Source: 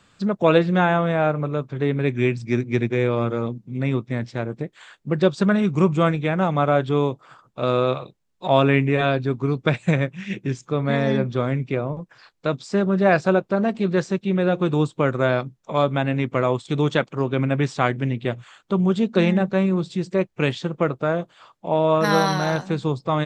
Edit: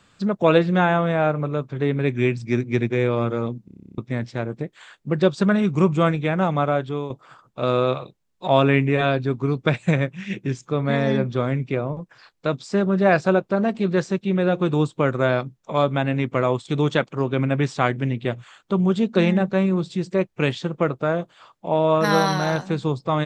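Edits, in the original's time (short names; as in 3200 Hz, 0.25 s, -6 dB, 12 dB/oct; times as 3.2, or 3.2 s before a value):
3.65 stutter in place 0.03 s, 11 plays
6.5–7.1 fade out, to -10.5 dB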